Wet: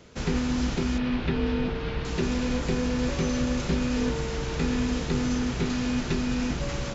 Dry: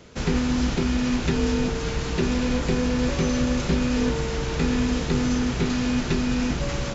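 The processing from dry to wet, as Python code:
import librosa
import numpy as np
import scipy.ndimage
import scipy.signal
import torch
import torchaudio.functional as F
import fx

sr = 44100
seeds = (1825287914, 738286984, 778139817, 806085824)

y = fx.lowpass(x, sr, hz=3900.0, slope=24, at=(0.98, 2.05))
y = F.gain(torch.from_numpy(y), -3.5).numpy()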